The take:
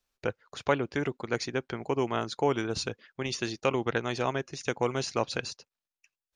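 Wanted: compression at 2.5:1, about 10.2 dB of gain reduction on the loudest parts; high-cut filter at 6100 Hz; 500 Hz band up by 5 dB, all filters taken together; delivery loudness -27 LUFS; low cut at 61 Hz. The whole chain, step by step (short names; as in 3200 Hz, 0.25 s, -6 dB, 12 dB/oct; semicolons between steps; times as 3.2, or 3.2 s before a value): HPF 61 Hz; LPF 6100 Hz; bell 500 Hz +6 dB; compressor 2.5:1, threshold -33 dBFS; gain +9 dB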